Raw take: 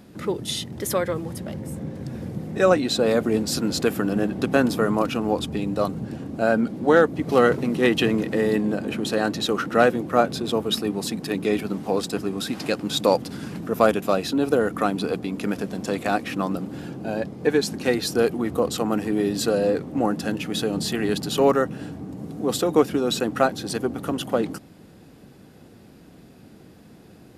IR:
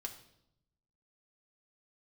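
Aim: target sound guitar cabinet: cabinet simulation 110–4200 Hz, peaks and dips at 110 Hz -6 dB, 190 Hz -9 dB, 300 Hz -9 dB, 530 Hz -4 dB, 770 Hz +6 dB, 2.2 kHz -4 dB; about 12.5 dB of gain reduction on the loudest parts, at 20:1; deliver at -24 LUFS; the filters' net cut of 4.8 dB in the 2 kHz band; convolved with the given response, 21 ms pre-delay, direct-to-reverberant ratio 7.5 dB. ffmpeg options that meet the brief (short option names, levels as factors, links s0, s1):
-filter_complex "[0:a]equalizer=f=2000:t=o:g=-6,acompressor=threshold=0.0631:ratio=20,asplit=2[s0][s1];[1:a]atrim=start_sample=2205,adelay=21[s2];[s1][s2]afir=irnorm=-1:irlink=0,volume=0.562[s3];[s0][s3]amix=inputs=2:normalize=0,highpass=110,equalizer=f=110:t=q:w=4:g=-6,equalizer=f=190:t=q:w=4:g=-9,equalizer=f=300:t=q:w=4:g=-9,equalizer=f=530:t=q:w=4:g=-4,equalizer=f=770:t=q:w=4:g=6,equalizer=f=2200:t=q:w=4:g=-4,lowpass=f=4200:w=0.5412,lowpass=f=4200:w=1.3066,volume=2.82"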